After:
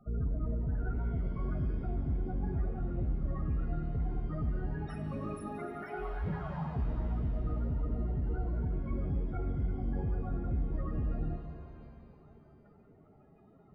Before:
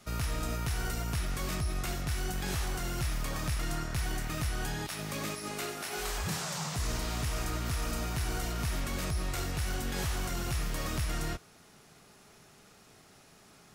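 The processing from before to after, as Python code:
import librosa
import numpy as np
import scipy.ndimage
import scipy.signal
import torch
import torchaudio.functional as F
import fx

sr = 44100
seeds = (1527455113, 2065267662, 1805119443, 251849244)

y = fx.halfwave_hold(x, sr)
y = fx.spec_topn(y, sr, count=16)
y = fx.rev_shimmer(y, sr, seeds[0], rt60_s=2.3, semitones=7, shimmer_db=-8, drr_db=5.0)
y = y * 10.0 ** (-5.0 / 20.0)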